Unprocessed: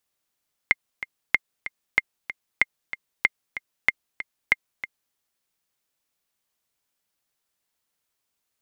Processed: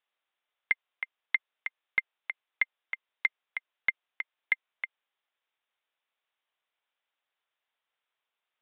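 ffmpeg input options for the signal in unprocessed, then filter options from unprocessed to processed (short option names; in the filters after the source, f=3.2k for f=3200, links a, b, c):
-f lavfi -i "aevalsrc='pow(10,(-3.5-13.5*gte(mod(t,2*60/189),60/189))/20)*sin(2*PI*2100*mod(t,60/189))*exp(-6.91*mod(t,60/189)/0.03)':d=4.44:s=44100"
-af "highpass=610,aresample=8000,asoftclip=type=tanh:threshold=-15dB,aresample=44100"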